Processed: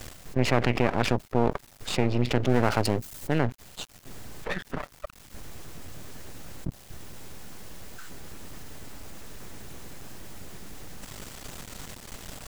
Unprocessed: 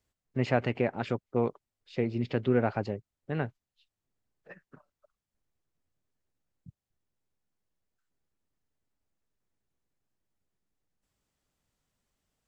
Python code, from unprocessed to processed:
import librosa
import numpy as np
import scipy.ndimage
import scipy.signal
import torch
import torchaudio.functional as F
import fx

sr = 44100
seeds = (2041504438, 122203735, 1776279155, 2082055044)

y = np.maximum(x, 0.0)
y = fx.high_shelf(y, sr, hz=5300.0, db=12.0, at=(2.49, 3.39))
y = fx.env_flatten(y, sr, amount_pct=70)
y = y * librosa.db_to_amplitude(3.5)